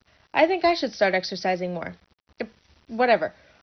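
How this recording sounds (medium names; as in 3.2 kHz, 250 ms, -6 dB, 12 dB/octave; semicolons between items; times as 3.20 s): a quantiser's noise floor 10-bit, dither none; MP2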